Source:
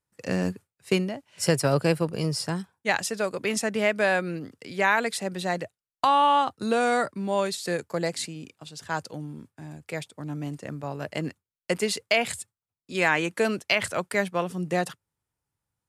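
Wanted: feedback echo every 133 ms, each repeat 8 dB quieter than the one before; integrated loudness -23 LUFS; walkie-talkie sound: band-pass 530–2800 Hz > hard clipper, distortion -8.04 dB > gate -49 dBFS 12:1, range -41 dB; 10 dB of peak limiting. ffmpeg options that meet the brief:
-af "alimiter=limit=0.119:level=0:latency=1,highpass=530,lowpass=2800,aecho=1:1:133|266|399|532|665:0.398|0.159|0.0637|0.0255|0.0102,asoftclip=type=hard:threshold=0.0316,agate=range=0.00891:threshold=0.00355:ratio=12,volume=5.01"

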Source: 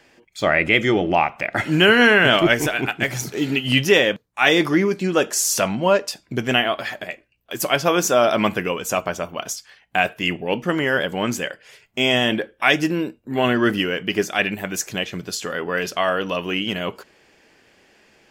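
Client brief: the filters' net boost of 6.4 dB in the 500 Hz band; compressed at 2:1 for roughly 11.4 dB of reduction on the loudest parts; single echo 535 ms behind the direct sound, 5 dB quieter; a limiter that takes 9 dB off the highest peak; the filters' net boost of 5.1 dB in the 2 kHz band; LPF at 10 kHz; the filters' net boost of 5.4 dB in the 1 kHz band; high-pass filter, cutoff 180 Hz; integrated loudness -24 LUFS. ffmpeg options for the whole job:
-af "highpass=180,lowpass=10000,equalizer=f=500:t=o:g=7,equalizer=f=1000:t=o:g=3.5,equalizer=f=2000:t=o:g=5,acompressor=threshold=0.0501:ratio=2,alimiter=limit=0.2:level=0:latency=1,aecho=1:1:535:0.562,volume=1.19"

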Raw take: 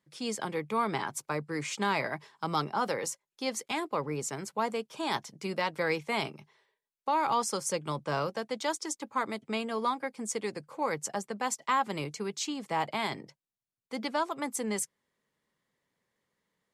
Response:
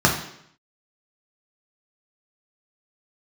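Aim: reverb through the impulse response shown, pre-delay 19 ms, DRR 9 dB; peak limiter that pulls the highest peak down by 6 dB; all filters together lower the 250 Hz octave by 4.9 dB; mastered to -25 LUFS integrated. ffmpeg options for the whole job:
-filter_complex "[0:a]equalizer=f=250:t=o:g=-6.5,alimiter=limit=0.0794:level=0:latency=1,asplit=2[s0][s1];[1:a]atrim=start_sample=2205,adelay=19[s2];[s1][s2]afir=irnorm=-1:irlink=0,volume=0.0355[s3];[s0][s3]amix=inputs=2:normalize=0,volume=2.99"

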